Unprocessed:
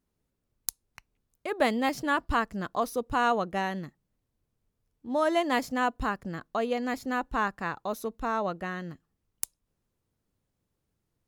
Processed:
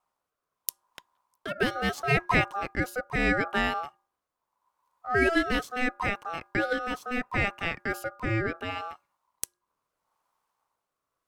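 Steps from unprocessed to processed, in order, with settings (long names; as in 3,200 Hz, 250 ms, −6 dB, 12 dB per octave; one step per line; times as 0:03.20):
hum removal 214.8 Hz, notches 3
ring modulation 1,000 Hz
rotating-speaker cabinet horn 0.75 Hz
level +6.5 dB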